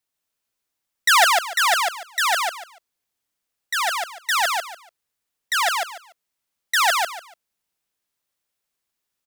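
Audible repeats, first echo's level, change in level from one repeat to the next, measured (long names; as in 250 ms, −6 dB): 3, −3.0 dB, −13.0 dB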